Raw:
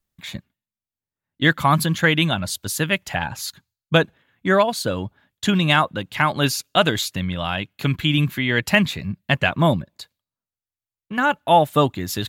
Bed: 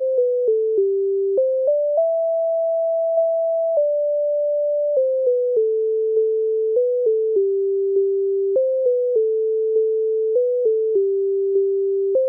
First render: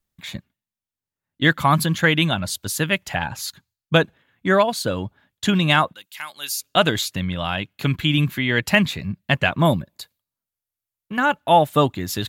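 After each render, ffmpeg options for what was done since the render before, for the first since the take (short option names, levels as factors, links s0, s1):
-filter_complex "[0:a]asettb=1/sr,asplit=3[s0][s1][s2];[s0]atrim=end=5.934[s3];[s1]atrim=start=5.93:end=6.62,asetpts=PTS-STARTPTS,afade=t=in:d=0.004:c=qsin,afade=t=out:st=0.686:d=0.004:c=qsin,aderivative[s4];[s2]atrim=start=6.616[s5];[s3][s4]acrossfade=d=0.004:c1=hsin:c2=qsin[s6];[s6][s5]acrossfade=d=0.004:c1=qsin:c2=hsin,asettb=1/sr,asplit=3[s7][s8][s9];[s7]atrim=end=9.654[s10];[s8]atrim=start=9.65:end=11.17,asetpts=PTS-STARTPTS,afade=t=in:d=0.004:c=qsin,afade=t=out:st=1.516:d=0.004:c=qsin,equalizer=f=13000:t=o:w=0.77:g=9[s11];[s9]atrim=start=11.166[s12];[s10][s11]acrossfade=d=0.004:c1=hsin:c2=qsin[s13];[s13][s12]acrossfade=d=0.004:c1=qsin:c2=hsin"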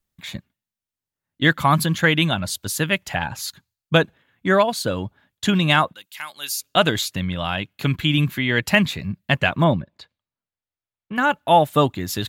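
-filter_complex "[0:a]asettb=1/sr,asplit=3[s0][s1][s2];[s0]atrim=end=9.644[s3];[s1]atrim=start=9.64:end=11.16,asetpts=PTS-STARTPTS,afade=t=in:d=0.004:c=qsin,afade=t=out:st=1.516:d=0.004:c=qsin,lowpass=3200[s4];[s2]atrim=start=11.156[s5];[s3][s4]acrossfade=d=0.004:c1=hsin:c2=qsin[s6];[s6][s5]acrossfade=d=0.004:c1=qsin:c2=hsin"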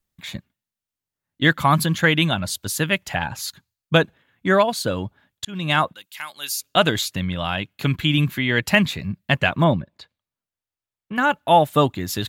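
-filter_complex "[0:a]asplit=2[s0][s1];[s0]atrim=end=5.45,asetpts=PTS-STARTPTS,afade=t=out:st=5.446:d=0.004:c=hsin[s2];[s1]atrim=start=5.45,asetpts=PTS-STARTPTS,afade=t=in:d=0.4[s3];[s2][s3]concat=n=2:v=0:a=1"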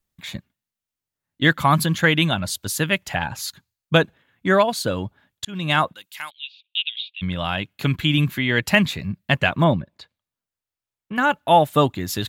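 -filter_complex "[0:a]asplit=3[s0][s1][s2];[s0]afade=t=out:st=6.29:d=0.02[s3];[s1]asuperpass=centerf=3000:order=8:qfactor=2.3,afade=t=in:st=6.29:d=0.02,afade=t=out:st=7.21:d=0.02[s4];[s2]afade=t=in:st=7.21:d=0.02[s5];[s3][s4][s5]amix=inputs=3:normalize=0"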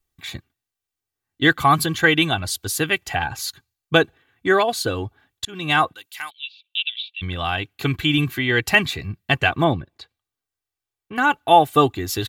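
-af "aecho=1:1:2.6:0.64"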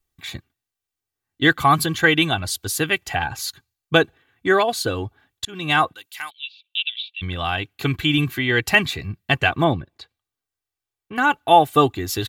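-af anull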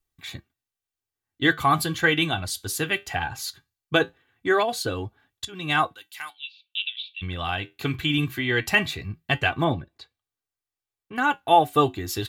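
-af "flanger=delay=7:depth=4.4:regen=-70:speed=0.19:shape=sinusoidal"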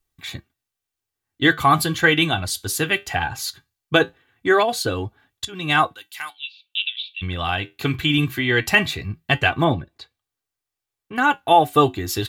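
-af "volume=1.68,alimiter=limit=0.708:level=0:latency=1"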